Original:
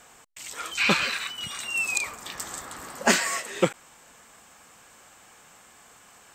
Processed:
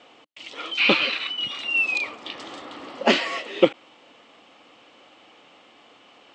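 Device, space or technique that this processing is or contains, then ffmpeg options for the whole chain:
kitchen radio: -af "highpass=170,equalizer=frequency=170:width_type=q:width=4:gain=-7,equalizer=frequency=300:width_type=q:width=4:gain=9,equalizer=frequency=540:width_type=q:width=4:gain=4,equalizer=frequency=1000:width_type=q:width=4:gain=-3,equalizer=frequency=1600:width_type=q:width=4:gain=-10,equalizer=frequency=3000:width_type=q:width=4:gain=6,lowpass=frequency=4200:width=0.5412,lowpass=frequency=4200:width=1.3066,volume=3dB"

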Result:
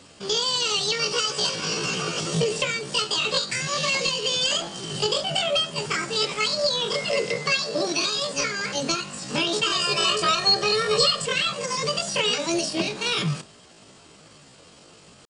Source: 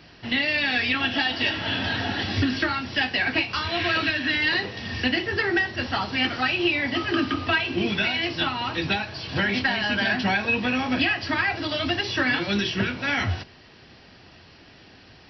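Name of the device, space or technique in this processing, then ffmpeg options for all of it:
chipmunk voice: -filter_complex "[0:a]asettb=1/sr,asplit=3[link_01][link_02][link_03];[link_01]atrim=end=7.384[link_04];[link_02]atrim=start=7.38:end=8.38,asetpts=PTS-STARTPTS,afade=type=in:duration=0.004:curve=qsin,afade=type=out:start_time=0.996:duration=0.004:curve=qsin,highpass=84[link_05];[link_03]atrim=start=8.376[link_06];[link_04][link_05]acrossfade=duration=0.004:curve1=hsin:curve2=qsin[link_07];[link_07][link_06]acrossfade=duration=0.004:curve1=qsin:curve2=hsin,asettb=1/sr,asplit=3[link_08][link_09][link_10];[link_08]atrim=end=9.734[link_11];[link_09]atrim=start=9.73:end=11.27,asetpts=PTS-STARTPTS,afade=type=in:duration=0.004:curve=qsin,afade=type=out:start_time=1.536:duration=0.004:curve=qsin,aecho=1:1:2.8:0.98,atrim=end_sample=67914[link_12];[link_10]atrim=start=11.266[link_13];[link_11][link_12]acrossfade=duration=0.004:curve1=hsin:curve2=qsin[link_14];[link_14][link_13]acrossfade=duration=0.004:curve1=qsin:curve2=hsin,asetrate=74167,aresample=44100,atempo=0.594604"

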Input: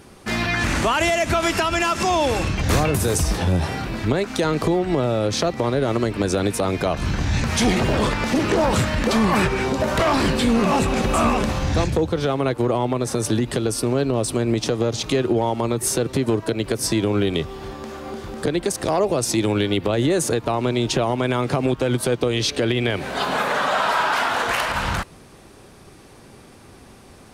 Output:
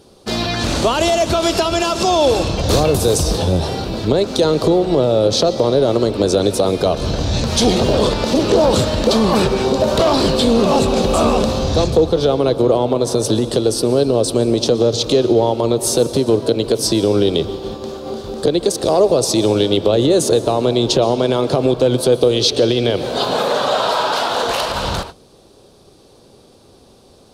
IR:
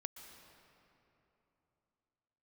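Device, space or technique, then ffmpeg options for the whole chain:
keyed gated reverb: -filter_complex "[0:a]asplit=3[link_01][link_02][link_03];[1:a]atrim=start_sample=2205[link_04];[link_02][link_04]afir=irnorm=-1:irlink=0[link_05];[link_03]apad=whole_len=1205333[link_06];[link_05][link_06]sidechaingate=range=-33dB:threshold=-33dB:ratio=16:detection=peak,volume=4.5dB[link_07];[link_01][link_07]amix=inputs=2:normalize=0,equalizer=frequency=500:width_type=o:width=1:gain=8,equalizer=frequency=2000:width_type=o:width=1:gain=-11,equalizer=frequency=4000:width_type=o:width=1:gain=10,volume=-4.5dB"

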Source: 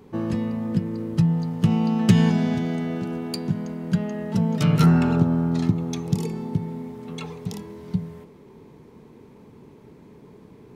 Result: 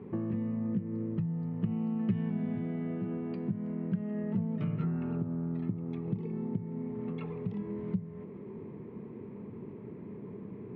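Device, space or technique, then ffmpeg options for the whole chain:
bass amplifier: -af "acompressor=threshold=-37dB:ratio=4,highpass=82,equalizer=frequency=110:width_type=q:width=4:gain=7,equalizer=frequency=200:width_type=q:width=4:gain=8,equalizer=frequency=370:width_type=q:width=4:gain=5,equalizer=frequency=840:width_type=q:width=4:gain=-5,equalizer=frequency=1500:width_type=q:width=4:gain=-5,lowpass=frequency=2300:width=0.5412,lowpass=frequency=2300:width=1.3066"

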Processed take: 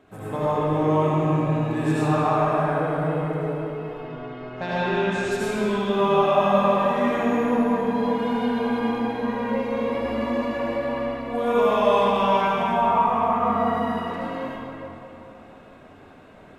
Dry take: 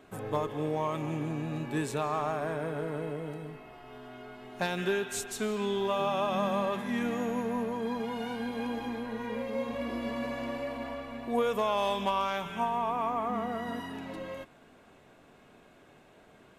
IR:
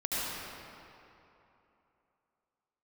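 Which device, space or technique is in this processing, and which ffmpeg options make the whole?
swimming-pool hall: -filter_complex "[0:a]asettb=1/sr,asplit=3[link_01][link_02][link_03];[link_01]atrim=end=3.914[link_04];[link_02]atrim=start=3.91:end=5.29,asetpts=PTS-STARTPTS,afade=type=in:duration=0.004:curve=qsin,afade=type=out:start_time=1.376:duration=0.004:curve=qsin,lowpass=5200[link_05];[link_03]atrim=start=5.286[link_06];[link_04][link_05]acrossfade=duration=0.004:curve1=hsin:curve2=qsin[link_07];[link_07][link_06]acrossfade=duration=0.004:curve1=qsin:curve2=hsin,equalizer=frequency=90:width=3.8:gain=5.5[link_08];[1:a]atrim=start_sample=2205[link_09];[link_08][link_09]afir=irnorm=-1:irlink=0,highshelf=frequency=3600:gain=-7,volume=2dB"

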